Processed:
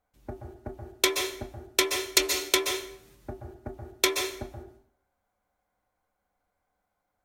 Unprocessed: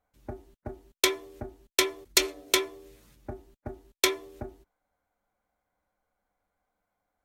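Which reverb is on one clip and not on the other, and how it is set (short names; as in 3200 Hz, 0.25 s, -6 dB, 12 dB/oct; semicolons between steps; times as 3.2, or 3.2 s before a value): plate-style reverb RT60 0.57 s, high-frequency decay 0.9×, pre-delay 0.115 s, DRR 4 dB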